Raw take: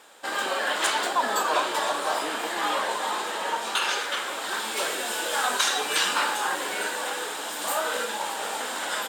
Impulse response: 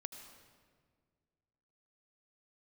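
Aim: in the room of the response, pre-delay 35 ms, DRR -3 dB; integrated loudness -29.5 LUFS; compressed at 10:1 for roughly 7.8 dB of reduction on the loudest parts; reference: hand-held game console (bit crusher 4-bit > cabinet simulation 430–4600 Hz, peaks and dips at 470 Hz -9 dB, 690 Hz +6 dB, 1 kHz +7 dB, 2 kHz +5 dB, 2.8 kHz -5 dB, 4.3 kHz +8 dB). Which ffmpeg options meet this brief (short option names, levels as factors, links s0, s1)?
-filter_complex "[0:a]acompressor=threshold=0.0447:ratio=10,asplit=2[s0][s1];[1:a]atrim=start_sample=2205,adelay=35[s2];[s1][s2]afir=irnorm=-1:irlink=0,volume=2.11[s3];[s0][s3]amix=inputs=2:normalize=0,acrusher=bits=3:mix=0:aa=0.000001,highpass=430,equalizer=f=470:t=q:w=4:g=-9,equalizer=f=690:t=q:w=4:g=6,equalizer=f=1000:t=q:w=4:g=7,equalizer=f=2000:t=q:w=4:g=5,equalizer=f=2800:t=q:w=4:g=-5,equalizer=f=4300:t=q:w=4:g=8,lowpass=f=4600:w=0.5412,lowpass=f=4600:w=1.3066,volume=0.501"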